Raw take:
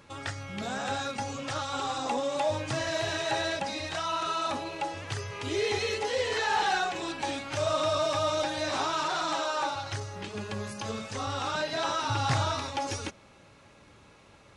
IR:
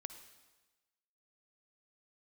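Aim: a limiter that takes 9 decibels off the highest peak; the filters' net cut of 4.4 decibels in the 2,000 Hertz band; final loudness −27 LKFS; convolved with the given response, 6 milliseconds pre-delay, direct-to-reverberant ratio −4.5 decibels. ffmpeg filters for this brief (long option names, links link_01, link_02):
-filter_complex "[0:a]equalizer=frequency=2000:width_type=o:gain=-6,alimiter=level_in=2.5dB:limit=-24dB:level=0:latency=1,volume=-2.5dB,asplit=2[link_01][link_02];[1:a]atrim=start_sample=2205,adelay=6[link_03];[link_02][link_03]afir=irnorm=-1:irlink=0,volume=8.5dB[link_04];[link_01][link_04]amix=inputs=2:normalize=0,volume=2.5dB"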